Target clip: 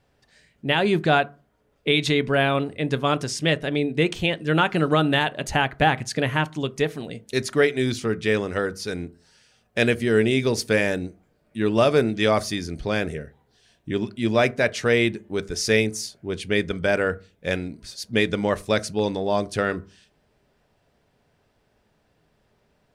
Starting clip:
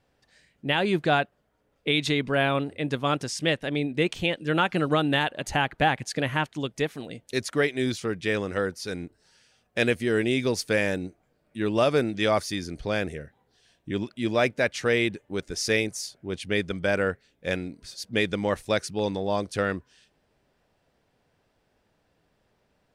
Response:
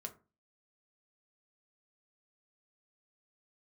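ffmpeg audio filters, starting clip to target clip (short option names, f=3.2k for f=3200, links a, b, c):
-filter_complex "[0:a]asplit=2[a][b];[1:a]atrim=start_sample=2205,lowshelf=f=190:g=6[c];[b][c]afir=irnorm=-1:irlink=0,volume=-3dB[d];[a][d]amix=inputs=2:normalize=0"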